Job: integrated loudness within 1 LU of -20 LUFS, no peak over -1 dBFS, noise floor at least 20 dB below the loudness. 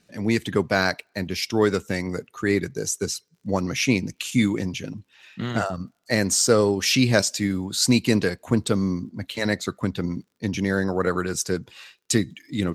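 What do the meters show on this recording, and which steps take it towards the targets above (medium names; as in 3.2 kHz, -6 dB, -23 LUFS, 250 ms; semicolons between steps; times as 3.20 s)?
tick rate 42 per s; loudness -24.0 LUFS; peak level -4.0 dBFS; loudness target -20.0 LUFS
-> de-click; trim +4 dB; peak limiter -1 dBFS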